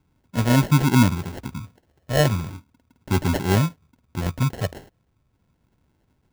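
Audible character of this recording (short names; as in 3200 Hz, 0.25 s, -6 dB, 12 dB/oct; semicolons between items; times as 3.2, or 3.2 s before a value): phasing stages 8, 0.37 Hz, lowest notch 310–2100 Hz; aliases and images of a low sample rate 1200 Hz, jitter 0%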